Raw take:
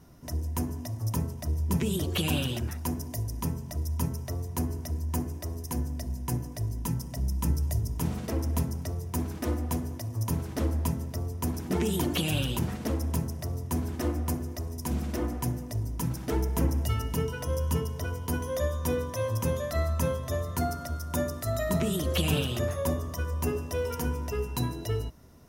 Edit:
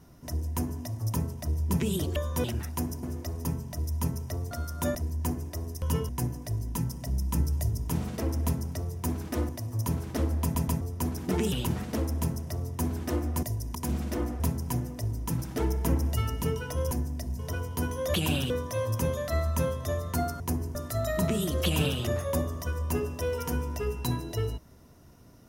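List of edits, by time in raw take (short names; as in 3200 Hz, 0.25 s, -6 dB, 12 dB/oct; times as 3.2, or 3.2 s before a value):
2.16–2.52 swap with 18.65–18.93
3.11–3.43 swap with 14.35–14.77
4.49–4.84 swap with 20.83–21.27
5.71–6.19 swap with 17.63–17.9
8.53–8.83 copy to 15.42
9.59–9.91 cut
10.84 stutter in place 0.13 s, 3 plays
11.94–12.44 cut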